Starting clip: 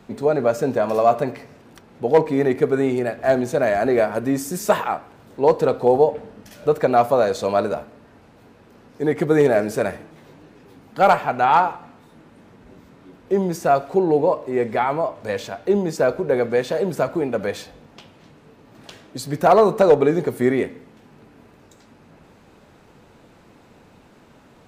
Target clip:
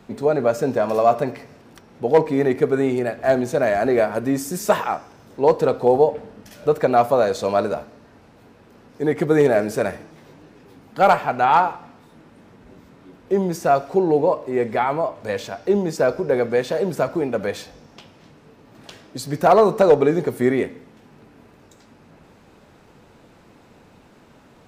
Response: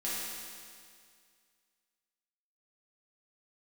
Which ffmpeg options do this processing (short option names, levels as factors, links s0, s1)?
-filter_complex "[0:a]asplit=2[s0][s1];[s1]bandpass=f=5300:t=q:w=7.5:csg=0[s2];[1:a]atrim=start_sample=2205[s3];[s2][s3]afir=irnorm=-1:irlink=0,volume=0.211[s4];[s0][s4]amix=inputs=2:normalize=0"